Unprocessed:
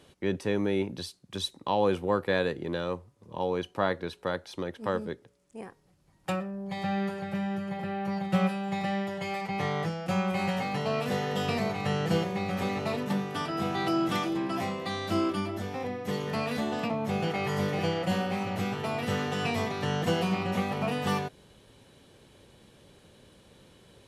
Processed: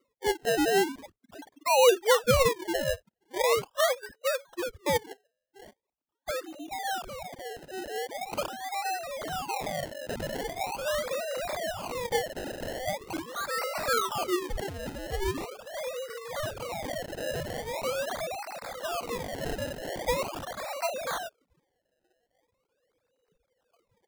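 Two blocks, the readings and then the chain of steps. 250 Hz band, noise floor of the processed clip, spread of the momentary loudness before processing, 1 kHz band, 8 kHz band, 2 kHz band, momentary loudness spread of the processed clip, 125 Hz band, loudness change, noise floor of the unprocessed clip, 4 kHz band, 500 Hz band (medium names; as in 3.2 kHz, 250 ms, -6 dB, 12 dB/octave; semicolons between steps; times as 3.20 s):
-9.0 dB, -81 dBFS, 7 LU, +0.5 dB, +10.0 dB, +1.0 dB, 12 LU, -9.5 dB, 0.0 dB, -62 dBFS, +2.0 dB, +2.0 dB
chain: formants replaced by sine waves; spectral noise reduction 16 dB; decimation with a swept rate 26×, swing 100% 0.42 Hz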